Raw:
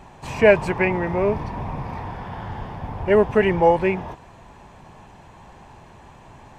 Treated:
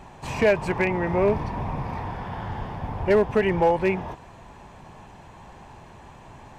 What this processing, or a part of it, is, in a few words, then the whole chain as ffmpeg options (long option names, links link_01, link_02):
limiter into clipper: -af "alimiter=limit=-9.5dB:level=0:latency=1:release=308,asoftclip=type=hard:threshold=-12dB"